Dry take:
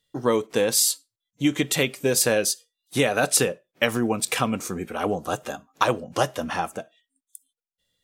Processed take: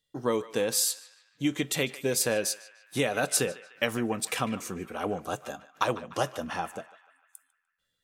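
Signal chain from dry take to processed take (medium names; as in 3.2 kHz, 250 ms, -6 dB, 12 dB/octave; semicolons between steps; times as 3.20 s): band-passed feedback delay 149 ms, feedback 61%, band-pass 1.8 kHz, level -14 dB; trim -6 dB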